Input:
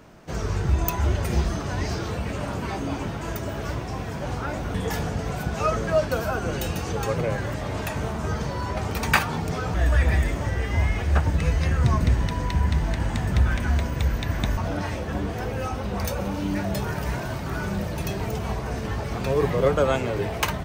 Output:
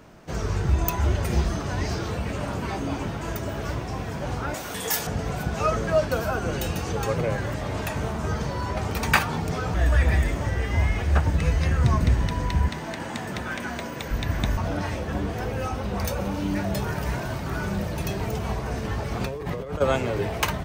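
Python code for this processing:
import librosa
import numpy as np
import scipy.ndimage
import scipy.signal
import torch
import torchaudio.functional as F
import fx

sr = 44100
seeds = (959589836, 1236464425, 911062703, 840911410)

y = fx.riaa(x, sr, side='recording', at=(4.54, 5.07))
y = fx.highpass(y, sr, hz=230.0, slope=12, at=(12.68, 14.11))
y = fx.over_compress(y, sr, threshold_db=-28.0, ratio=-1.0, at=(19.2, 19.8), fade=0.02)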